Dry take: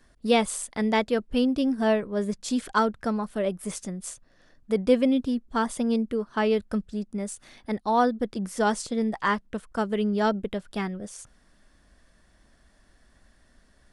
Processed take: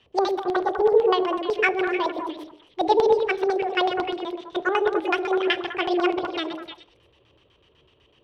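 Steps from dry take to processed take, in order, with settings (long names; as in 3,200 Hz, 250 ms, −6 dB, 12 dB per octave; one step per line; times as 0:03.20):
delay that plays each chunk backwards 133 ms, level −9.5 dB
high-pass filter 50 Hz 12 dB per octave
notch filter 4,300 Hz, Q 11
gain on a spectral selection 0:00.83–0:01.60, 1,300–5,300 Hz −20 dB
mains-hum notches 60/120/180/240/300/360/420 Hz
change of speed 1.69×
auto-filter low-pass square 8 Hz 560–3,600 Hz
echo through a band-pass that steps 101 ms, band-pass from 430 Hz, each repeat 1.4 octaves, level −2 dB
convolution reverb RT60 0.65 s, pre-delay 7 ms, DRR 17 dB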